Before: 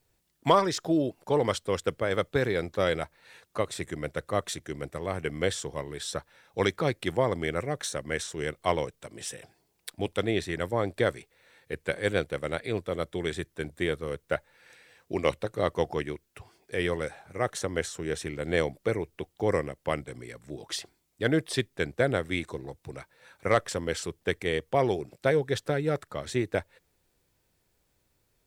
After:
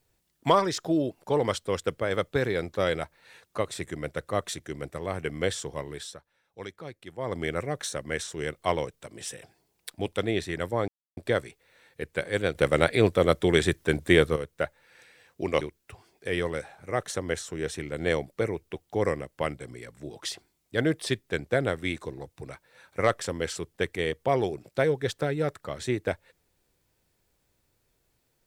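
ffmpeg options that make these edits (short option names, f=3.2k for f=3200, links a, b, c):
-filter_complex "[0:a]asplit=7[a][b][c][d][e][f][g];[a]atrim=end=6.17,asetpts=PTS-STARTPTS,afade=t=out:st=5.95:d=0.22:silence=0.199526[h];[b]atrim=start=6.17:end=7.17,asetpts=PTS-STARTPTS,volume=-14dB[i];[c]atrim=start=7.17:end=10.88,asetpts=PTS-STARTPTS,afade=t=in:d=0.22:silence=0.199526,afade=t=out:st=3.706:d=0.004:c=hsin,apad=pad_dur=0.29[j];[d]atrim=start=10.88:end=12.262,asetpts=PTS-STARTPTS,afade=t=in:d=0.004:c=hsin[k];[e]atrim=start=12.258:end=14.072,asetpts=PTS-STARTPTS,volume=9.5dB[l];[f]atrim=start=14.068:end=15.322[m];[g]atrim=start=16.078[n];[h][i][j][k]concat=n=4:v=0:a=1[o];[o][l]acrossfade=d=0.004:c1=hsin:c2=hsin[p];[p][m]acrossfade=d=0.004:c1=hsin:c2=hsin[q];[q][n]acrossfade=d=0.004:c1=hsin:c2=hsin"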